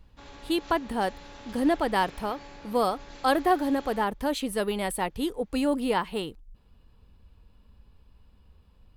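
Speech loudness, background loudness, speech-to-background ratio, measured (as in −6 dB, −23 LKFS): −28.0 LKFS, −47.0 LKFS, 19.0 dB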